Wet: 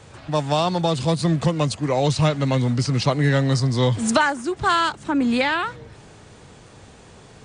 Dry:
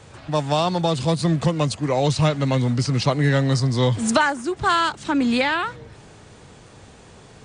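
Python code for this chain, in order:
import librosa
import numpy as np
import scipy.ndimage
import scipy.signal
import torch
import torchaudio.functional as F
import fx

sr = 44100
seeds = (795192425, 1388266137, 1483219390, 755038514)

y = fx.peak_eq(x, sr, hz=4200.0, db=fx.line((4.96, -12.0), (5.39, -3.0)), octaves=1.9, at=(4.96, 5.39), fade=0.02)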